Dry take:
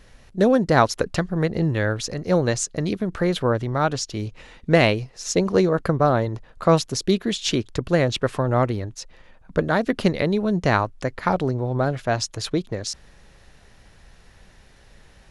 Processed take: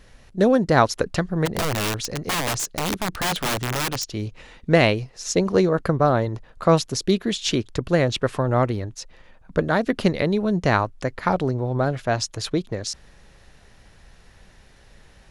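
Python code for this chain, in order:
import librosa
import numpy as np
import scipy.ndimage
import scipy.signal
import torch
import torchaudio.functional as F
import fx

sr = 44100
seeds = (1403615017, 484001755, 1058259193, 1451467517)

y = fx.overflow_wrap(x, sr, gain_db=18.0, at=(1.45, 4.03), fade=0.02)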